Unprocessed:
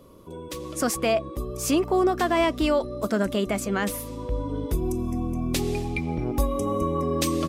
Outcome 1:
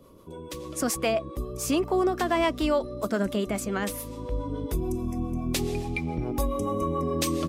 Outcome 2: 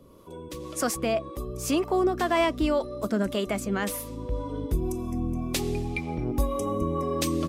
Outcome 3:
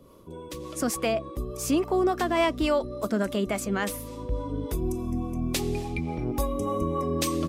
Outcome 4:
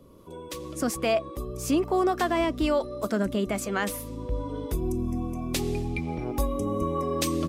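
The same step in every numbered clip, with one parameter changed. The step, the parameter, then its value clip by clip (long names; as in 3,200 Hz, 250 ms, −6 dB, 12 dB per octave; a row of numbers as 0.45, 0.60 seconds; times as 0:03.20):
two-band tremolo in antiphase, speed: 7.1, 1.9, 3.5, 1.2 Hertz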